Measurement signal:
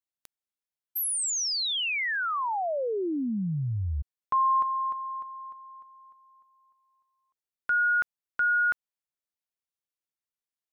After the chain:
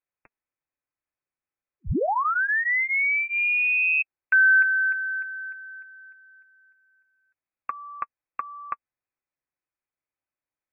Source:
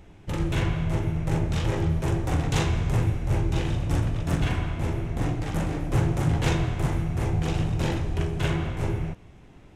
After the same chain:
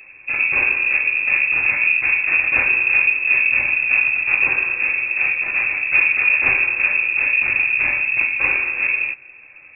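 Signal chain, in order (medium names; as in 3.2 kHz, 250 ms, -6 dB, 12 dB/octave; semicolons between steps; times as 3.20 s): comb of notches 240 Hz; frequency inversion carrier 2.6 kHz; trim +6.5 dB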